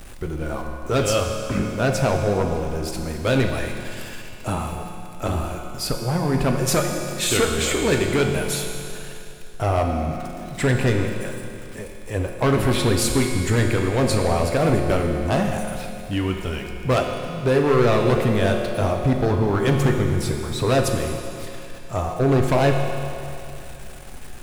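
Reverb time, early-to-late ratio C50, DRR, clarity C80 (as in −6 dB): 2.8 s, 3.5 dB, 2.0 dB, 4.5 dB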